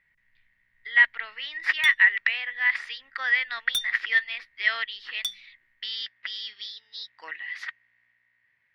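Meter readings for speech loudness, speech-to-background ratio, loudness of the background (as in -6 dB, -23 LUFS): -24.5 LUFS, 7.0 dB, -31.5 LUFS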